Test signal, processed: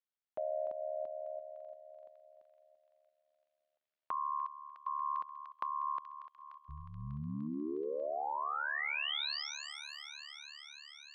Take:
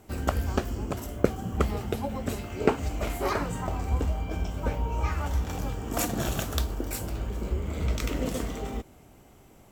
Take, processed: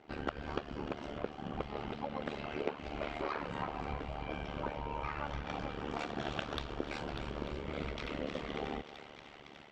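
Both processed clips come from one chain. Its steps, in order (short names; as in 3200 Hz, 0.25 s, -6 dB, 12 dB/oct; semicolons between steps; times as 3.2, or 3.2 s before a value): LPF 4000 Hz 24 dB/oct; low shelf 280 Hz -8 dB; AGC gain up to 5 dB; bell 90 Hz -9 dB 0.52 oct; soft clip -9.5 dBFS; compressor, threshold -34 dBFS; HPF 60 Hz; on a send: thinning echo 0.297 s, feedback 84%, high-pass 800 Hz, level -10.5 dB; on the sum: AM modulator 73 Hz, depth 85%; gain +2.5 dB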